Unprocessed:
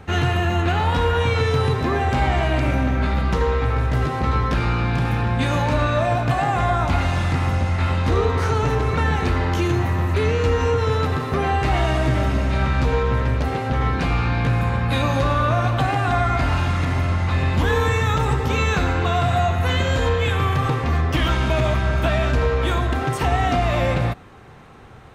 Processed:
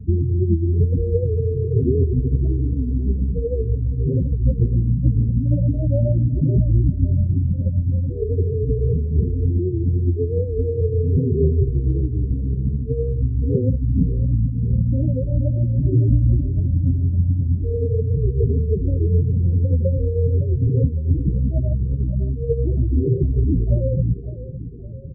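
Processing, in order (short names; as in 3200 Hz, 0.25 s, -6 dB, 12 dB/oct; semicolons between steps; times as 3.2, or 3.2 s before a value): CVSD 16 kbps; steep low-pass 590 Hz 72 dB/oct; low shelf 450 Hz +2 dB; negative-ratio compressor -22 dBFS, ratio -0.5; in parallel at -9 dB: sample-and-hold 25×; on the sum: rotary speaker horn 7.5 Hz; loudest bins only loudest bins 8; feedback echo 0.56 s, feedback 51%, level -14 dB; record warp 78 rpm, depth 100 cents; gain +4 dB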